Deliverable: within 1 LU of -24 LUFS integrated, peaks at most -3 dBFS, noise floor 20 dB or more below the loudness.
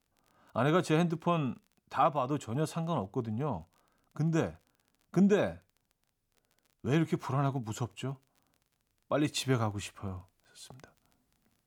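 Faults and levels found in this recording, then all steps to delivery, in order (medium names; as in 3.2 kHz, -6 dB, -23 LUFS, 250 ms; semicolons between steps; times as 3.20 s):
tick rate 25 per s; loudness -32.0 LUFS; peak level -16.0 dBFS; loudness target -24.0 LUFS
-> de-click; trim +8 dB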